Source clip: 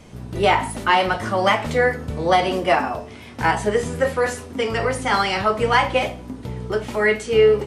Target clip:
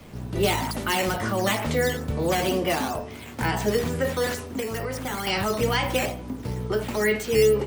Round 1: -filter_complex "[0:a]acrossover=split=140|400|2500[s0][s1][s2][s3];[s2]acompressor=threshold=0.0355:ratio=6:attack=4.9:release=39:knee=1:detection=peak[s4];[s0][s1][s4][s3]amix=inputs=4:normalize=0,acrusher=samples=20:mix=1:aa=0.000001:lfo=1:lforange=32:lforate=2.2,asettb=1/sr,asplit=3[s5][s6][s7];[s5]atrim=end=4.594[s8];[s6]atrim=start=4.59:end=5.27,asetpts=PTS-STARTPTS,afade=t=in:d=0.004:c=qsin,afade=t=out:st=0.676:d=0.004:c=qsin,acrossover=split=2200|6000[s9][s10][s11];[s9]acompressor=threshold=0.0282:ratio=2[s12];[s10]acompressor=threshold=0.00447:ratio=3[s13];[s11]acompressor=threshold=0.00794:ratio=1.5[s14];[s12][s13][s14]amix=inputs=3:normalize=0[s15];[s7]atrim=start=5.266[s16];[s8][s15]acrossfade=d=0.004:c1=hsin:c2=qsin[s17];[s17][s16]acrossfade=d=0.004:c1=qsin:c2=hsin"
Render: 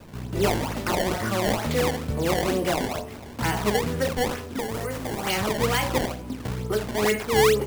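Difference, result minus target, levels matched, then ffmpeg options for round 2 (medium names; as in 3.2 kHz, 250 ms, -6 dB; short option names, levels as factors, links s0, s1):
decimation with a swept rate: distortion +10 dB
-filter_complex "[0:a]acrossover=split=140|400|2500[s0][s1][s2][s3];[s2]acompressor=threshold=0.0355:ratio=6:attack=4.9:release=39:knee=1:detection=peak[s4];[s0][s1][s4][s3]amix=inputs=4:normalize=0,acrusher=samples=5:mix=1:aa=0.000001:lfo=1:lforange=8:lforate=2.2,asettb=1/sr,asplit=3[s5][s6][s7];[s5]atrim=end=4.594[s8];[s6]atrim=start=4.59:end=5.27,asetpts=PTS-STARTPTS,afade=t=in:d=0.004:c=qsin,afade=t=out:st=0.676:d=0.004:c=qsin,acrossover=split=2200|6000[s9][s10][s11];[s9]acompressor=threshold=0.0282:ratio=2[s12];[s10]acompressor=threshold=0.00447:ratio=3[s13];[s11]acompressor=threshold=0.00794:ratio=1.5[s14];[s12][s13][s14]amix=inputs=3:normalize=0[s15];[s7]atrim=start=5.266[s16];[s8][s15]acrossfade=d=0.004:c1=hsin:c2=qsin[s17];[s17][s16]acrossfade=d=0.004:c1=qsin:c2=hsin"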